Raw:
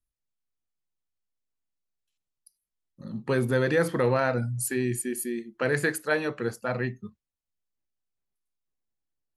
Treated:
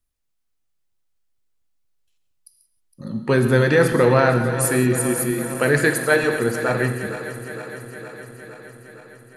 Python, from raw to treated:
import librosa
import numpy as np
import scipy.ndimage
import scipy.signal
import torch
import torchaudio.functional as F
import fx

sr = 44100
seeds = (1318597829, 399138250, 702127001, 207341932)

y = fx.reverse_delay_fb(x, sr, ms=231, feedback_pct=82, wet_db=-12.5)
y = fx.rev_gated(y, sr, seeds[0], gate_ms=200, shape='flat', drr_db=7.5)
y = y * 10.0 ** (7.5 / 20.0)